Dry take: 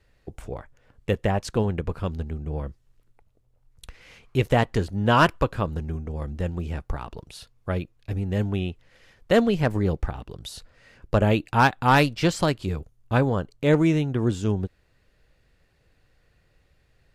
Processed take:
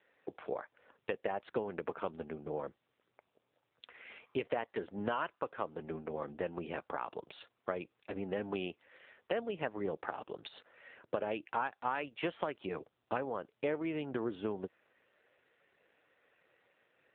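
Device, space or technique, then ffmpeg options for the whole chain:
voicemail: -af "highpass=410,lowpass=3.1k,acompressor=threshold=-34dB:ratio=8,volume=2.5dB" -ar 8000 -c:a libopencore_amrnb -b:a 7400

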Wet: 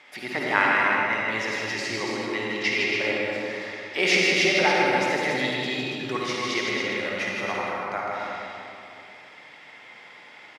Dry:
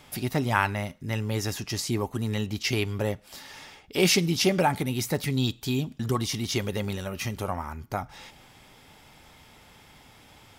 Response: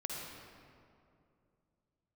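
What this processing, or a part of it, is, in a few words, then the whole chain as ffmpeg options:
station announcement: -filter_complex "[0:a]highpass=390,lowpass=4.9k,equalizer=f=2k:t=o:w=0.56:g=11,aecho=1:1:157.4|282.8:0.562|0.501[a];[1:a]atrim=start_sample=2205[b];[a][b]afir=irnorm=-1:irlink=0,volume=1.5dB"

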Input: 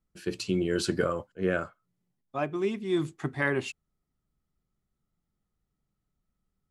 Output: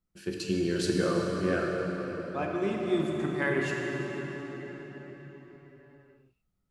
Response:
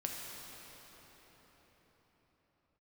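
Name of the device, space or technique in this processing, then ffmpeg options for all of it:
cathedral: -filter_complex "[1:a]atrim=start_sample=2205[a];[0:a][a]afir=irnorm=-1:irlink=0,volume=-1dB"

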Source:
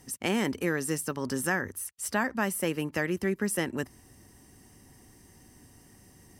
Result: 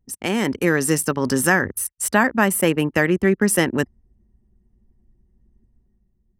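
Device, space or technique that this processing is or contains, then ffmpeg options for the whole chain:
voice memo with heavy noise removal: -filter_complex "[0:a]asettb=1/sr,asplit=3[a][b][c];[a]atrim=end=2.044[d];[b]atrim=start=2.04:end=3.3,asetpts=PTS-STARTPTS,afade=t=in:d=0.004:c=qsin,afade=t=out:st=1.256:d=0.004:c=qsin,equalizer=f=5.4k:t=o:w=0.5:g=-5.5[e];[c]atrim=start=3.296[f];[d][e]acrossfade=d=0.004:c1=hsin:c2=qsin[g];[g][f]acrossfade=d=0.004:c1=qsin:c2=hsin,anlmdn=0.631,dynaudnorm=f=100:g=11:m=7dB,volume=4.5dB"

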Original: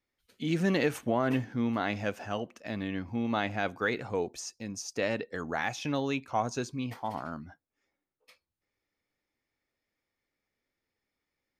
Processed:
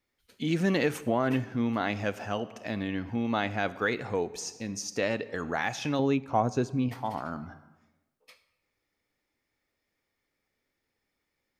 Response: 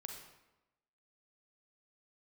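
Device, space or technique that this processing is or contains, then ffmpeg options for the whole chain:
compressed reverb return: -filter_complex "[0:a]asettb=1/sr,asplit=3[a][b][c];[a]atrim=end=5.994[d];[b]atrim=start=5.99:end=6.89,asetpts=PTS-STARTPTS,afade=t=in:d=0.004:c=qsin,afade=t=out:st=0.896:d=0.004:c=qsin,tiltshelf=f=1.2k:g=6[e];[c]atrim=start=6.886[f];[d][e]acrossfade=d=0.004:c1=hsin:c2=qsin[g];[g][f]acrossfade=d=0.004:c1=qsin:c2=hsin,asplit=2[h][i];[1:a]atrim=start_sample=2205[j];[i][j]afir=irnorm=-1:irlink=0,acompressor=threshold=-41dB:ratio=6,volume=0.5dB[k];[h][k]amix=inputs=2:normalize=0"

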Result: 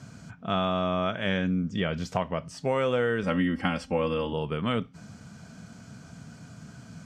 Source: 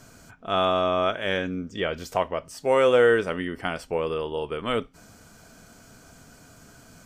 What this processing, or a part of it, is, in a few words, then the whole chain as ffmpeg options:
jukebox: -filter_complex "[0:a]highpass=110,lowpass=6.7k,lowshelf=f=250:t=q:w=1.5:g=9.5,acompressor=threshold=-23dB:ratio=4,asettb=1/sr,asplit=3[a][b][c];[a]atrim=end=3.234[d];[b]atrim=start=3.23:end=4.33,asetpts=PTS-STARTPTS,afade=t=in:d=0.004:c=qsin,afade=t=out:st=1.096:d=0.004:c=qsin,aecho=1:1:3.7:0.97,atrim=end_sample=48510[e];[c]atrim=start=4.326[f];[d][e]acrossfade=d=0.004:c1=hsin:c2=qsin[g];[g][f]acrossfade=d=0.004:c1=qsin:c2=hsin"

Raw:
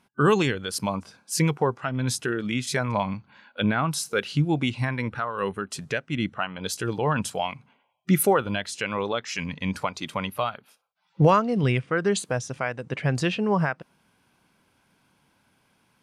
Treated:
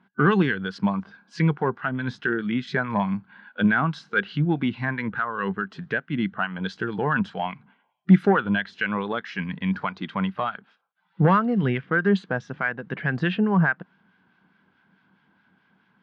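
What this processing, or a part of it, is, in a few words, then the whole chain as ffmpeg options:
guitar amplifier with harmonic tremolo: -filter_complex "[0:a]acrossover=split=1200[a][b];[a]aeval=exprs='val(0)*(1-0.5/2+0.5/2*cos(2*PI*4.7*n/s))':c=same[c];[b]aeval=exprs='val(0)*(1-0.5/2-0.5/2*cos(2*PI*4.7*n/s))':c=same[d];[c][d]amix=inputs=2:normalize=0,asoftclip=type=tanh:threshold=-12.5dB,highpass=110,equalizer=f=120:t=q:w=4:g=-4,equalizer=f=190:t=q:w=4:g=8,equalizer=f=560:t=q:w=4:g=-7,equalizer=f=1.6k:t=q:w=4:g=8,equalizer=f=2.5k:t=q:w=4:g=-6,lowpass=f=3.4k:w=0.5412,lowpass=f=3.4k:w=1.3066,volume=3dB"

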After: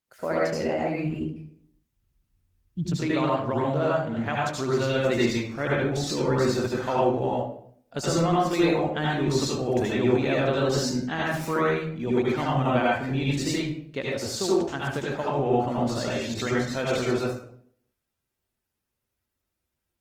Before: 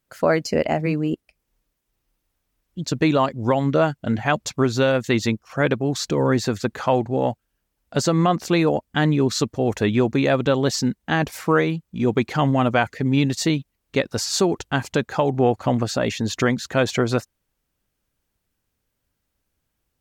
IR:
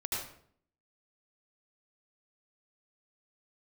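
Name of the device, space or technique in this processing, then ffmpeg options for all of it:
far-field microphone of a smart speaker: -filter_complex "[0:a]asplit=3[a][b][c];[a]afade=t=out:st=1.04:d=0.02[d];[b]asubboost=boost=12:cutoff=180,afade=t=in:st=1.04:d=0.02,afade=t=out:st=2.85:d=0.02[e];[c]afade=t=in:st=2.85:d=0.02[f];[d][e][f]amix=inputs=3:normalize=0[g];[1:a]atrim=start_sample=2205[h];[g][h]afir=irnorm=-1:irlink=0,highpass=f=120:p=1,dynaudnorm=f=530:g=17:m=4dB,volume=-8dB" -ar 48000 -c:a libopus -b:a 20k

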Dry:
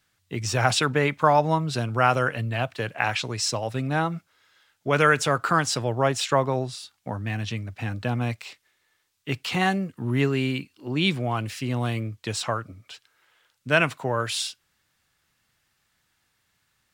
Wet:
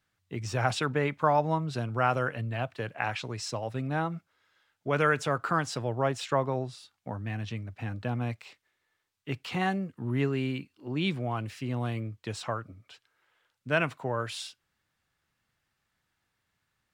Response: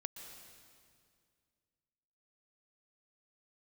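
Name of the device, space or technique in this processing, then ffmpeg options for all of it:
behind a face mask: -af "highshelf=f=2.9k:g=-8,volume=-5dB"

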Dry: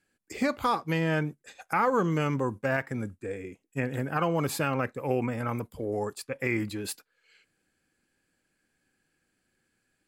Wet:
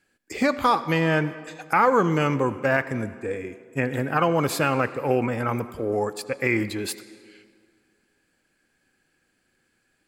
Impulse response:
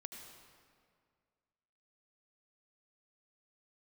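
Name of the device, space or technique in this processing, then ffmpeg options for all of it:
filtered reverb send: -filter_complex "[0:a]asplit=2[a][b];[b]highpass=240,lowpass=7.3k[c];[1:a]atrim=start_sample=2205[d];[c][d]afir=irnorm=-1:irlink=0,volume=-3.5dB[e];[a][e]amix=inputs=2:normalize=0,volume=4dB"

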